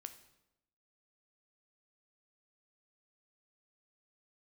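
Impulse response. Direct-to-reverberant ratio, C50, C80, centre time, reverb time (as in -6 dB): 9.0 dB, 12.5 dB, 15.0 dB, 8 ms, 0.90 s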